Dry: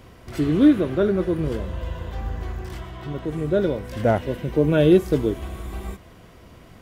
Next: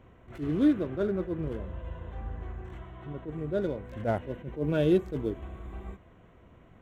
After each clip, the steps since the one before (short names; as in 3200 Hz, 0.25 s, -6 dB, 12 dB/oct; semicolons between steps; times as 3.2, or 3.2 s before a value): Wiener smoothing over 9 samples; attack slew limiter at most 210 dB/s; gain -8.5 dB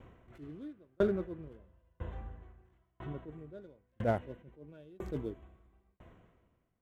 dB-ramp tremolo decaying 1 Hz, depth 38 dB; gain +2 dB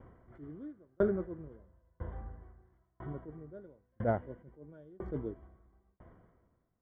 polynomial smoothing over 41 samples